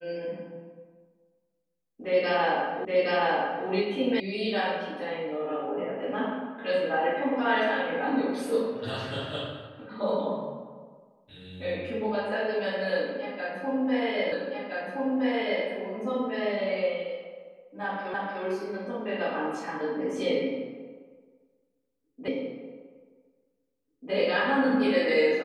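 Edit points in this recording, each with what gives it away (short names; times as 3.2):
2.85 repeat of the last 0.82 s
4.2 sound cut off
14.32 repeat of the last 1.32 s
18.14 repeat of the last 0.3 s
22.28 repeat of the last 1.84 s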